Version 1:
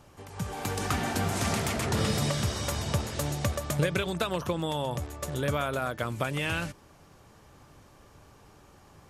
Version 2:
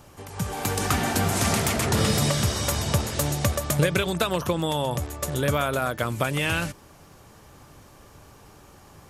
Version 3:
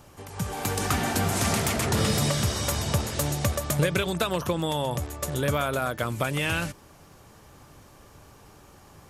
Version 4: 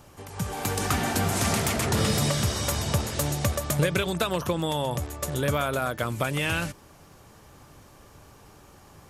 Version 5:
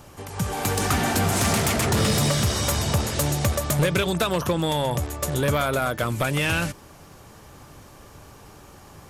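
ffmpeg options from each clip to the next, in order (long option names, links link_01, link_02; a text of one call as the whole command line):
ffmpeg -i in.wav -af "highshelf=frequency=9100:gain=7.5,volume=5dB" out.wav
ffmpeg -i in.wav -af "acontrast=65,volume=-8dB" out.wav
ffmpeg -i in.wav -af anull out.wav
ffmpeg -i in.wav -af "asoftclip=type=tanh:threshold=-19dB,volume=5dB" out.wav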